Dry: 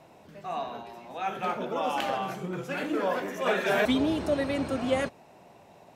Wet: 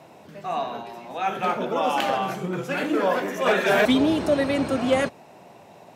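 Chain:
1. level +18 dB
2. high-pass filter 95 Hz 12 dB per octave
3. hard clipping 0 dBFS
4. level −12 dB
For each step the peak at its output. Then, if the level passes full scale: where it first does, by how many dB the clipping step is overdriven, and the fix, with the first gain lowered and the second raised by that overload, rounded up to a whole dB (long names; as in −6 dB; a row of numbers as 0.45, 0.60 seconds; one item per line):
+4.0, +4.0, 0.0, −12.0 dBFS
step 1, 4.0 dB
step 1 +14 dB, step 4 −8 dB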